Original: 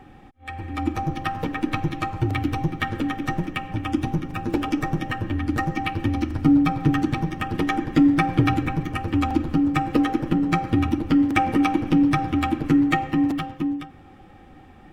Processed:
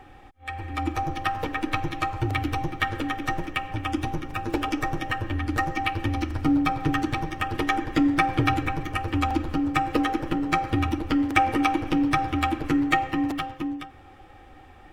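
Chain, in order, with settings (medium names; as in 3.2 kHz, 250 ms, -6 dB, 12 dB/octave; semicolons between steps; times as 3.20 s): peaking EQ 190 Hz -14 dB 1.1 oct; trim +1.5 dB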